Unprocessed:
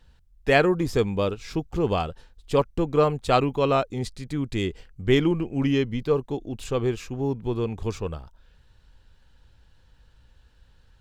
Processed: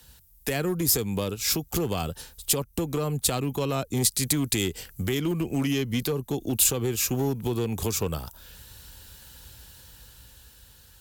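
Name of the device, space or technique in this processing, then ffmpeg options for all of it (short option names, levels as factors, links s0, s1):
FM broadcast chain: -filter_complex "[0:a]highpass=52,dynaudnorm=f=340:g=9:m=2,acrossover=split=130|290[s0][s1][s2];[s0]acompressor=threshold=0.0141:ratio=4[s3];[s1]acompressor=threshold=0.0282:ratio=4[s4];[s2]acompressor=threshold=0.0282:ratio=4[s5];[s3][s4][s5]amix=inputs=3:normalize=0,aemphasis=mode=production:type=50fm,alimiter=limit=0.0841:level=0:latency=1:release=232,asoftclip=type=hard:threshold=0.0631,lowpass=f=15000:w=0.5412,lowpass=f=15000:w=1.3066,aemphasis=mode=production:type=50fm,volume=1.68"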